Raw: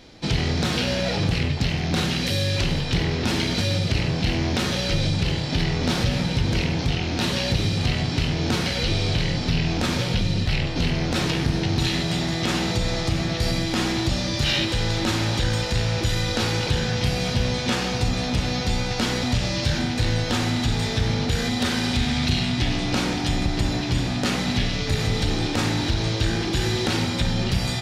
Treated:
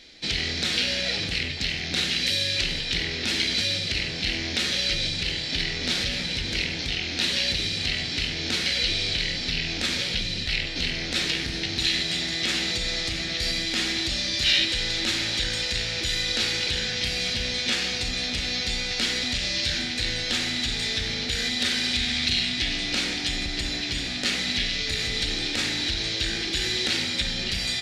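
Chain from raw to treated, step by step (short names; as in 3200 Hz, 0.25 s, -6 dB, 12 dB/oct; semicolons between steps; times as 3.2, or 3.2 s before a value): graphic EQ 125/1000/2000/4000/8000 Hz -10/-8/+9/+9/+6 dB; gain -7 dB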